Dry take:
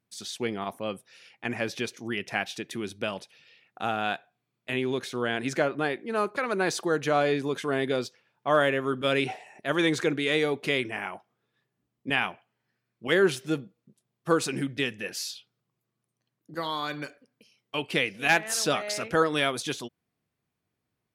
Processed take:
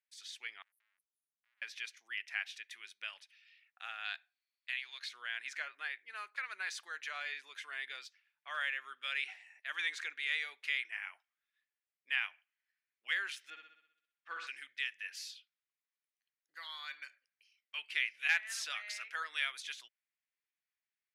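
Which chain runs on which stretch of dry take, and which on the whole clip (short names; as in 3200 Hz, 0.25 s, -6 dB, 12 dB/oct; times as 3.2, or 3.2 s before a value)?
0.62–1.62 inverse Chebyshev band-stop 450–4600 Hz, stop band 60 dB + compressor 10:1, threshold -54 dBFS + core saturation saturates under 2300 Hz
4.05–5.09 HPF 560 Hz 24 dB/oct + bell 4400 Hz +13.5 dB 0.33 oct
13.5–14.47 LPF 3000 Hz + flutter echo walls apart 10.9 m, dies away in 0.76 s
whole clip: Chebyshev high-pass 1900 Hz, order 3; tilt -4.5 dB/oct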